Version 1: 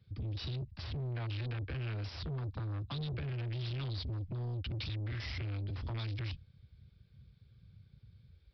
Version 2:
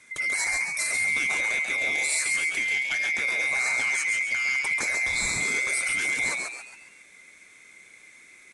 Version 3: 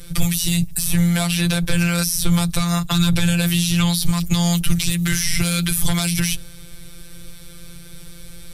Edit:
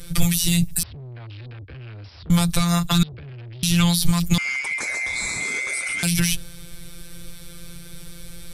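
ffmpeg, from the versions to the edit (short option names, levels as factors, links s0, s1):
-filter_complex "[0:a]asplit=2[s0][s1];[2:a]asplit=4[s2][s3][s4][s5];[s2]atrim=end=0.832[s6];[s0]atrim=start=0.828:end=2.302[s7];[s3]atrim=start=2.298:end=3.032[s8];[s1]atrim=start=3.028:end=3.632[s9];[s4]atrim=start=3.628:end=4.382[s10];[1:a]atrim=start=4.378:end=6.032[s11];[s5]atrim=start=6.028[s12];[s6][s7]acrossfade=d=0.004:c1=hsin:c2=hsin[s13];[s13][s8]acrossfade=d=0.004:c1=hsin:c2=hsin[s14];[s14][s9]acrossfade=d=0.004:c1=hsin:c2=hsin[s15];[s15][s10]acrossfade=d=0.004:c1=hsin:c2=hsin[s16];[s16][s11]acrossfade=d=0.004:c1=hsin:c2=hsin[s17];[s17][s12]acrossfade=d=0.004:c1=hsin:c2=hsin"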